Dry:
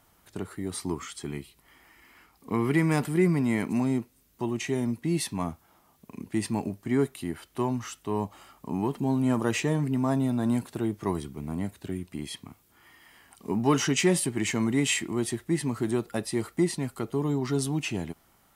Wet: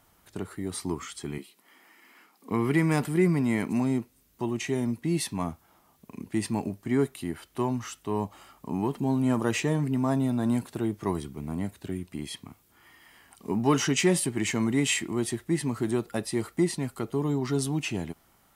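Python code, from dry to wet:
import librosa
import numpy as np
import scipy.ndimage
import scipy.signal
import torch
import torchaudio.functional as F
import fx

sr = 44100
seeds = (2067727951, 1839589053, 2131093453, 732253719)

y = fx.steep_highpass(x, sr, hz=190.0, slope=36, at=(1.38, 2.51))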